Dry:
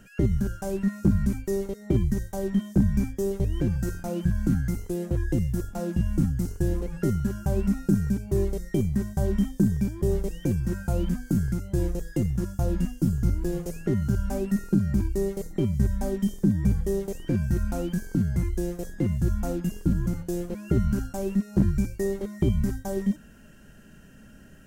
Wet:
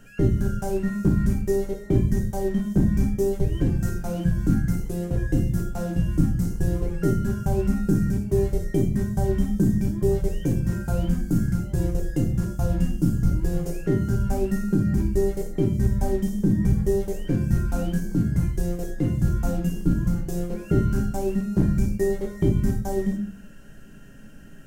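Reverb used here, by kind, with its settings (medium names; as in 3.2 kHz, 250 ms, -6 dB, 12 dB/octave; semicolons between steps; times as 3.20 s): simulated room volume 44 m³, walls mixed, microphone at 0.49 m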